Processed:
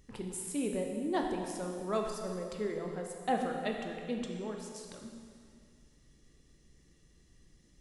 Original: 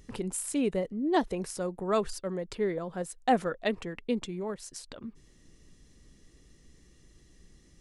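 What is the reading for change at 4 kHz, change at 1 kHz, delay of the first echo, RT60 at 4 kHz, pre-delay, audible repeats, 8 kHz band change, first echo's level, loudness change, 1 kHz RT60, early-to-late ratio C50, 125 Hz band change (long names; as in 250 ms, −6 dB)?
−4.5 dB, −5.0 dB, no echo audible, 2.1 s, 9 ms, no echo audible, −5.0 dB, no echo audible, −5.0 dB, 2.2 s, 3.5 dB, −4.0 dB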